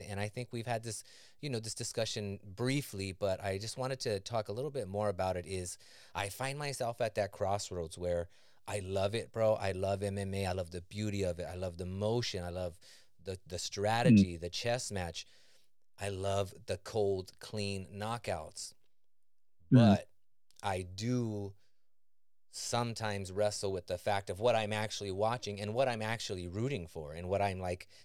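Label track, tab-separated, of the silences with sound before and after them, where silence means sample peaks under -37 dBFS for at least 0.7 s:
15.210000	16.010000	silence
18.660000	19.710000	silence
21.480000	22.560000	silence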